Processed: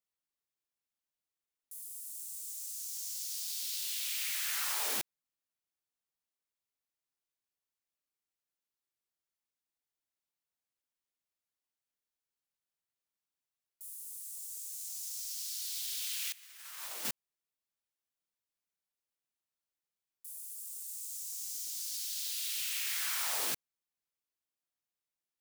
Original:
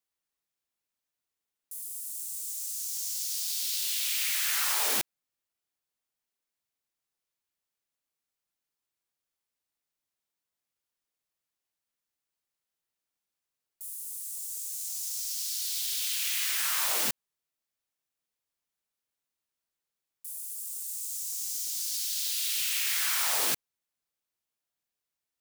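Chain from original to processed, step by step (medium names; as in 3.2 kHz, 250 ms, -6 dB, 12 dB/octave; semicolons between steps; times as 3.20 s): 16.32–17.05 s: gate -26 dBFS, range -20 dB; trim -6.5 dB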